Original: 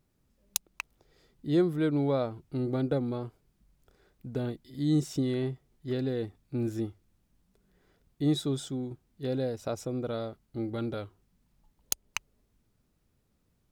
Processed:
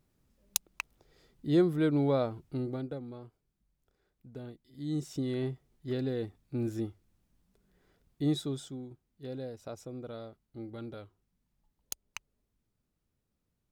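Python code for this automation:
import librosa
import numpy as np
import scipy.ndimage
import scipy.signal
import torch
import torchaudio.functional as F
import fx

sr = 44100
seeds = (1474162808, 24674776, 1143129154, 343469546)

y = fx.gain(x, sr, db=fx.line((2.47, 0.0), (2.97, -11.5), (4.63, -11.5), (5.44, -2.0), (8.23, -2.0), (8.91, -9.0)))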